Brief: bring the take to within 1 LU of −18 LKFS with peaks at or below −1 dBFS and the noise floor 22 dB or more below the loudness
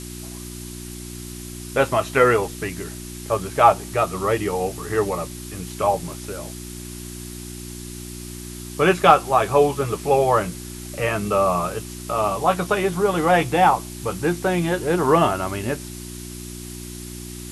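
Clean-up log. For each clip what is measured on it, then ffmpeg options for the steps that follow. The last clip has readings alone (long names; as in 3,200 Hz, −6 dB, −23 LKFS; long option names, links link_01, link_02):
mains hum 60 Hz; hum harmonics up to 360 Hz; level of the hum −33 dBFS; background noise floor −35 dBFS; target noise floor −43 dBFS; integrated loudness −20.5 LKFS; sample peak −2.0 dBFS; target loudness −18.0 LKFS
→ -af "bandreject=frequency=60:width_type=h:width=4,bandreject=frequency=120:width_type=h:width=4,bandreject=frequency=180:width_type=h:width=4,bandreject=frequency=240:width_type=h:width=4,bandreject=frequency=300:width_type=h:width=4,bandreject=frequency=360:width_type=h:width=4"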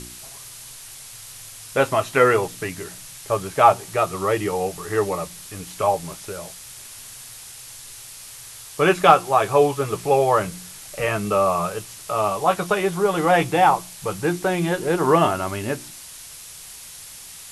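mains hum none found; background noise floor −40 dBFS; target noise floor −43 dBFS
→ -af "afftdn=noise_reduction=6:noise_floor=-40"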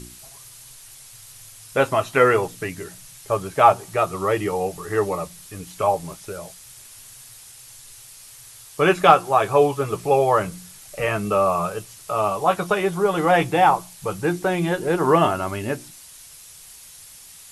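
background noise floor −45 dBFS; integrated loudness −20.5 LKFS; sample peak −2.0 dBFS; target loudness −18.0 LKFS
→ -af "volume=2.5dB,alimiter=limit=-1dB:level=0:latency=1"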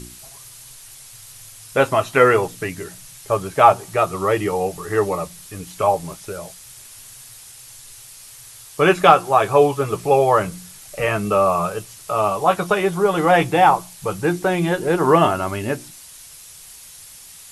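integrated loudness −18.5 LKFS; sample peak −1.0 dBFS; background noise floor −42 dBFS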